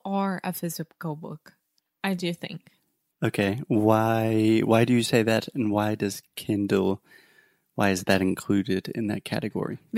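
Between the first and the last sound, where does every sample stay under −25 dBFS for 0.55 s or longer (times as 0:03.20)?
0:01.25–0:02.04
0:02.51–0:03.22
0:06.94–0:07.78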